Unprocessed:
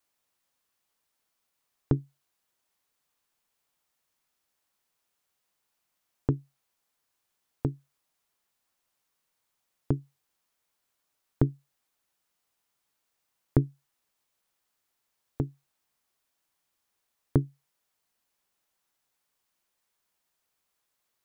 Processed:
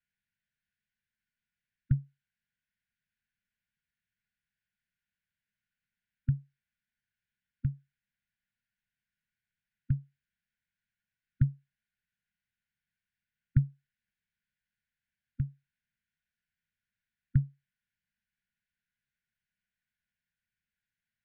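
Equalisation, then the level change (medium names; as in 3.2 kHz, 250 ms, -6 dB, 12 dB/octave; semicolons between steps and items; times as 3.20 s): brick-wall FIR band-stop 240–1400 Hz; low-pass 1.8 kHz 12 dB/octave; band-stop 940 Hz, Q 14; 0.0 dB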